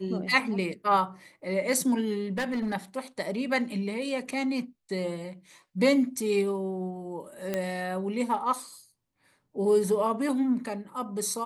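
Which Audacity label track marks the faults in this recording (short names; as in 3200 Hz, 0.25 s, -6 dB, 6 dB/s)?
2.310000	2.740000	clipped -25.5 dBFS
7.540000	7.540000	pop -15 dBFS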